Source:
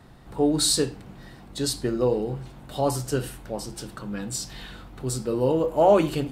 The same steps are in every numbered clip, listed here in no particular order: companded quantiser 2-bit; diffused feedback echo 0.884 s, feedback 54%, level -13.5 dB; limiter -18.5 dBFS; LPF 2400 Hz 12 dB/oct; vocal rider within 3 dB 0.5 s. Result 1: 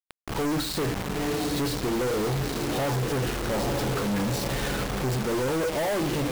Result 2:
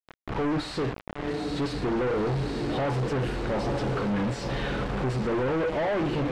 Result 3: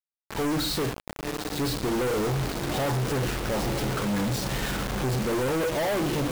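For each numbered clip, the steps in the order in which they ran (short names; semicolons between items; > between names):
diffused feedback echo > limiter > LPF > vocal rider > companded quantiser; diffused feedback echo > vocal rider > limiter > companded quantiser > LPF; vocal rider > LPF > limiter > diffused feedback echo > companded quantiser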